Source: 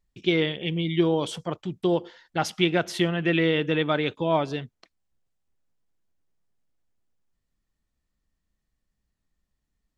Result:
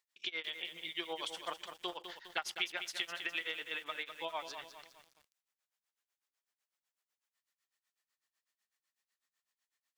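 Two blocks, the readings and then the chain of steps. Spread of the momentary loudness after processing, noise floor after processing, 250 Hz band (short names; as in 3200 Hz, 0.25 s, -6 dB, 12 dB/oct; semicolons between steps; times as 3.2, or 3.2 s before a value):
10 LU, under -85 dBFS, -29.0 dB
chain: HPF 1200 Hz 12 dB/oct; compressor 5:1, threshold -38 dBFS, peak gain reduction 15 dB; tremolo 8 Hz, depth 95%; lo-fi delay 0.204 s, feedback 55%, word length 10-bit, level -8.5 dB; gain +4.5 dB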